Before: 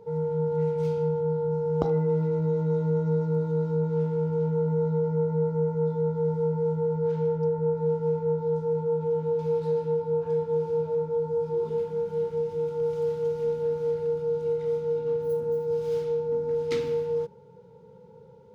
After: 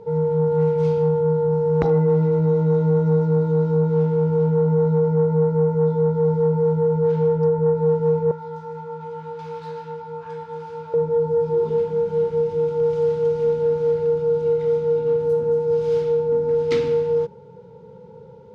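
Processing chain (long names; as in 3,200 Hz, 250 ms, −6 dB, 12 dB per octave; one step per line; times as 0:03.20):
0:08.31–0:10.94: low shelf with overshoot 760 Hz −13 dB, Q 1.5
sine wavefolder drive 4 dB, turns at −9 dBFS
high-frequency loss of the air 65 metres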